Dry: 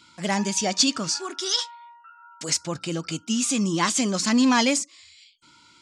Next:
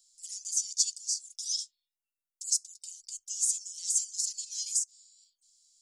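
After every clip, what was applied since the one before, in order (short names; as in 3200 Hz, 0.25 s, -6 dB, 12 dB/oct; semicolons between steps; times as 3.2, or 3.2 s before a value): inverse Chebyshev band-stop 110–1200 Hz, stop band 80 dB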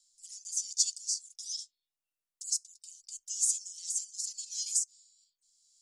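rotary speaker horn 0.8 Hz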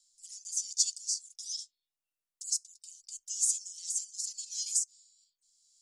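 nothing audible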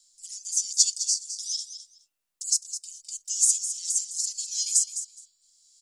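feedback echo 0.209 s, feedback 16%, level -11 dB; gain +7.5 dB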